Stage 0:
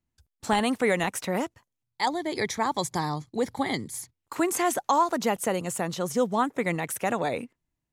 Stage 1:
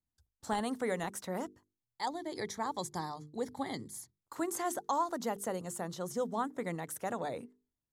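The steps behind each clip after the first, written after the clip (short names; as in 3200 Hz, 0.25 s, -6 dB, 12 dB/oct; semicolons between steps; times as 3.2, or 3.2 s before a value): bell 2500 Hz -10.5 dB 0.58 oct; notches 50/100/150/200/250/300/350/400/450 Hz; gain -9 dB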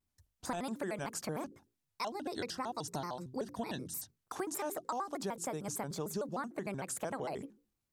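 compressor, threshold -40 dBFS, peak gain reduction 12.5 dB; shaped vibrato square 6.6 Hz, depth 250 cents; gain +5 dB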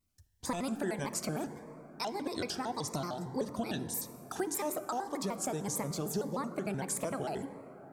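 plate-style reverb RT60 4.9 s, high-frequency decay 0.25×, DRR 10 dB; cascading phaser rising 1.7 Hz; gain +4.5 dB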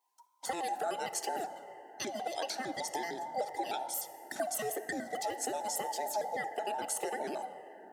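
band inversion scrambler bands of 1000 Hz; HPF 290 Hz 12 dB/oct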